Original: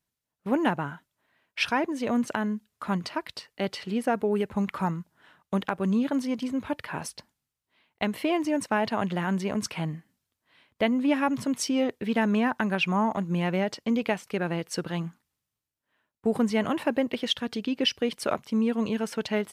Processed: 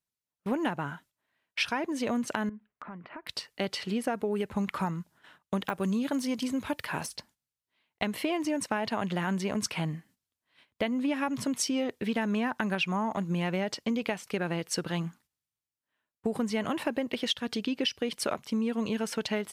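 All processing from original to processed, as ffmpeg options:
ffmpeg -i in.wav -filter_complex "[0:a]asettb=1/sr,asplit=3[link_01][link_02][link_03];[link_01]atrim=end=2.494[link_04];[link_02]atrim=start=2.49:end=3.27,asetpts=PTS-STARTPTS,afade=type=in:duration=0.004:curve=qsin,afade=type=out:start_time=0.776:duration=0.004:curve=qsin,acompressor=threshold=-39dB:ratio=8:attack=3.2:release=140:knee=1:detection=peak,lowpass=frequency=2200:width=0.5412,lowpass=frequency=2200:width=1.3066,equalizer=frequency=88:width_type=o:width=0.74:gain=-14.5[link_05];[link_03]atrim=start=3.266[link_06];[link_04][link_05]acrossfade=duration=0.004:curve1=hsin:curve2=qsin[link_07];[link_07][link_06]acrossfade=duration=0.004:curve1=qsin:curve2=hsin,asettb=1/sr,asplit=3[link_08][link_09][link_10];[link_08]atrim=end=5.644[link_11];[link_09]atrim=start=5.64:end=7.16,asetpts=PTS-STARTPTS,afade=type=in:duration=0.004:curve=qsin,afade=type=out:start_time=1.516:duration=0.004:curve=qsin,deesser=0.95,highshelf=frequency=5400:gain=8[link_12];[link_10]atrim=start=7.156[link_13];[link_11][link_12]acrossfade=duration=0.004:curve1=hsin:curve2=qsin[link_14];[link_14][link_13]acrossfade=duration=0.004:curve1=qsin:curve2=hsin,equalizer=frequency=7400:width=0.3:gain=4,acompressor=threshold=-26dB:ratio=6,agate=range=-10dB:threshold=-57dB:ratio=16:detection=peak" out.wav

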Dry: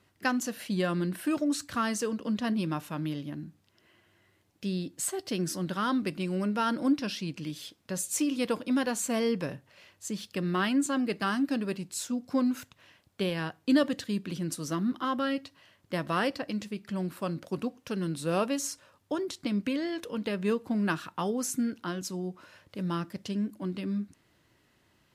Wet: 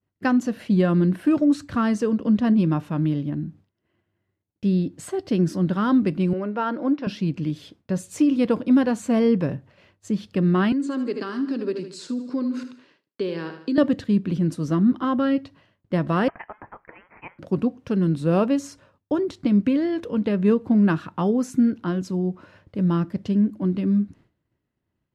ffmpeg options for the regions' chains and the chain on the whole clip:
ffmpeg -i in.wav -filter_complex "[0:a]asettb=1/sr,asplit=3[link_01][link_02][link_03];[link_01]atrim=end=6.334[link_04];[link_02]atrim=start=6.33:end=7.07,asetpts=PTS-STARTPTS,afade=type=in:duration=0.004:curve=qsin,afade=type=out:start_time=0.736:duration=0.004:curve=qsin,highpass=410,lowpass=6600,aemphasis=mode=reproduction:type=75fm[link_05];[link_03]atrim=start=7.066[link_06];[link_04][link_05]acrossfade=duration=0.004:curve1=hsin:curve2=qsin[link_07];[link_07][link_06]acrossfade=duration=0.004:curve1=qsin:curve2=hsin,asettb=1/sr,asplit=3[link_08][link_09][link_10];[link_08]atrim=end=10.724[link_11];[link_09]atrim=start=10.72:end=13.78,asetpts=PTS-STARTPTS,afade=type=in:duration=0.004:curve=qsin,afade=type=out:start_time=3.056:duration=0.004:curve=qsin,aecho=1:1:77|154|231|308:0.282|0.118|0.0497|0.0209,atrim=end_sample=134946,acompressor=threshold=-31dB:ratio=4:attack=3.2:release=140:knee=1:detection=peak,highpass=frequency=200:width=0.5412,highpass=frequency=200:width=1.3066,equalizer=frequency=200:width_type=q:width=4:gain=-8,equalizer=frequency=410:width_type=q:width=4:gain=6,equalizer=frequency=710:width_type=q:width=4:gain=-9,equalizer=frequency=4500:width_type=q:width=4:gain=10,lowpass=frequency=9700:width=0.5412,lowpass=frequency=9700:width=1.3066[link_12];[link_10]atrim=start=13.776[link_13];[link_11][link_12]acrossfade=duration=0.004:curve1=hsin:curve2=qsin[link_14];[link_14][link_13]acrossfade=duration=0.004:curve1=qsin:curve2=hsin,asettb=1/sr,asplit=3[link_15][link_16][link_17];[link_15]atrim=end=16.284[link_18];[link_16]atrim=start=16.28:end=17.39,asetpts=PTS-STARTPTS,afade=type=in:duration=0.004:curve=qsin,afade=type=out:start_time=1.106:duration=0.004:curve=qsin,highpass=frequency=1300:width=0.5412,highpass=frequency=1300:width=1.3066,aemphasis=mode=production:type=75kf,lowpass=frequency=3100:width_type=q:width=0.5098,lowpass=frequency=3100:width_type=q:width=0.6013,lowpass=frequency=3100:width_type=q:width=0.9,lowpass=frequency=3100:width_type=q:width=2.563,afreqshift=-3600[link_19];[link_17]atrim=start=17.386[link_20];[link_18][link_19]acrossfade=duration=0.004:curve1=hsin:curve2=qsin[link_21];[link_21][link_20]acrossfade=duration=0.004:curve1=qsin:curve2=hsin,aemphasis=mode=reproduction:type=75kf,agate=range=-33dB:threshold=-55dB:ratio=3:detection=peak,lowshelf=frequency=420:gain=10,volume=3.5dB" out.wav

